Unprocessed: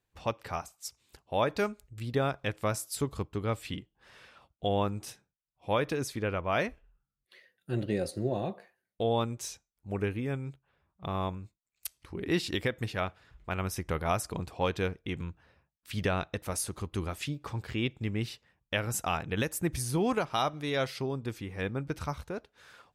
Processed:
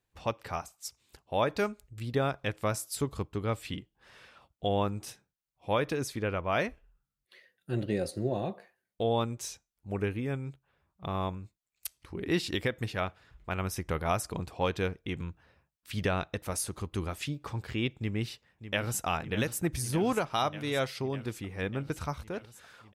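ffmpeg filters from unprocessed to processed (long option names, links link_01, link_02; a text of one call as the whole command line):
ffmpeg -i in.wav -filter_complex "[0:a]asplit=2[link_01][link_02];[link_02]afade=type=in:start_time=17.98:duration=0.01,afade=type=out:start_time=19.06:duration=0.01,aecho=0:1:600|1200|1800|2400|3000|3600|4200|4800|5400|6000|6600|7200:0.266073|0.212858|0.170286|0.136229|0.108983|0.0871866|0.0697493|0.0557994|0.0446396|0.0357116|0.0285693|0.0228555[link_03];[link_01][link_03]amix=inputs=2:normalize=0" out.wav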